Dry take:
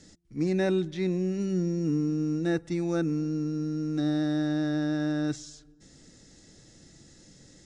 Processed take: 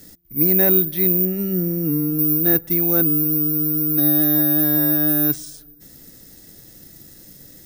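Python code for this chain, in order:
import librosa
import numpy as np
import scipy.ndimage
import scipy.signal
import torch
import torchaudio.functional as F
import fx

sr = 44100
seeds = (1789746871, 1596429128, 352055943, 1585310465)

y = (np.kron(scipy.signal.resample_poly(x, 1, 3), np.eye(3)[0]) * 3)[:len(x)]
y = fx.high_shelf(y, sr, hz=4600.0, db=-10.0, at=(1.25, 2.19))
y = F.gain(torch.from_numpy(y), 5.5).numpy()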